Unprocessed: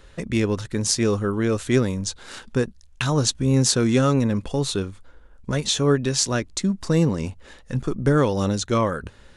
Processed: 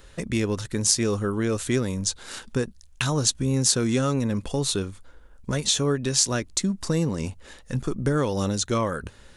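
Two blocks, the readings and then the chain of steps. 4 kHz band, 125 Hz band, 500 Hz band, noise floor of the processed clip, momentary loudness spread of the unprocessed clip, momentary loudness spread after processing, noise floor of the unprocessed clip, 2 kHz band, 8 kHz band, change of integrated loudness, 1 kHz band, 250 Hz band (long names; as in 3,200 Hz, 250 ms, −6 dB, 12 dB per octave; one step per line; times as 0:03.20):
−0.5 dB, −4.0 dB, −4.0 dB, −50 dBFS, 10 LU, 10 LU, −50 dBFS, −2.5 dB, +2.0 dB, −2.5 dB, −3.5 dB, −4.0 dB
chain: downward compressor 2 to 1, threshold −21 dBFS, peak gain reduction 5 dB
high-shelf EQ 6,700 Hz +9.5 dB
level −1 dB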